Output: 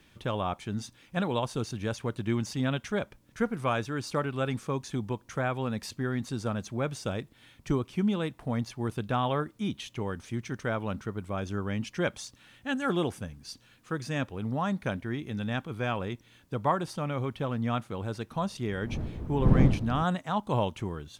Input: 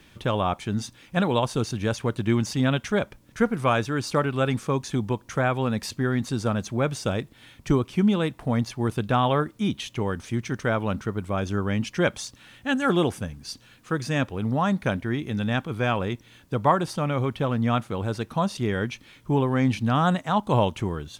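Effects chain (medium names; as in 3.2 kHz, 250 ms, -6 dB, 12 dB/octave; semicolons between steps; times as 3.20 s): 18.34–20.03 s: wind noise 170 Hz -22 dBFS; trim -6.5 dB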